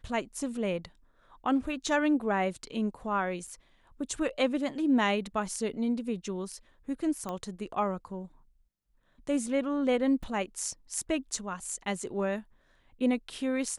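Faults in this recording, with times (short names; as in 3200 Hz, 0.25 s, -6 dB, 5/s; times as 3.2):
3.47–3.48 gap 6 ms
7.29 pop -22 dBFS
10.23 gap 2.5 ms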